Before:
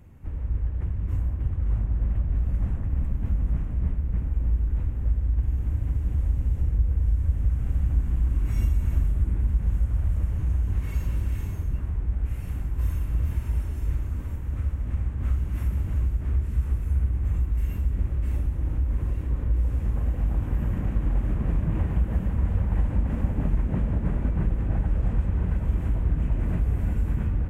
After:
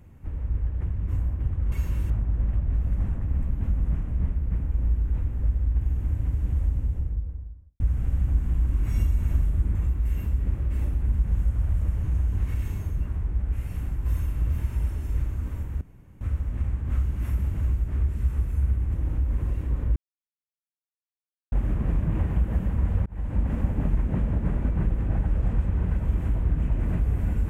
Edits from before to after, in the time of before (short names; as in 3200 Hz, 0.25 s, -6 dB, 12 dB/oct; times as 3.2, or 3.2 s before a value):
6.14–7.42 studio fade out
10.89–11.27 move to 1.72
14.54 insert room tone 0.40 s
17.27–18.54 move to 9.37
19.56–21.12 mute
22.66–23.01 fade in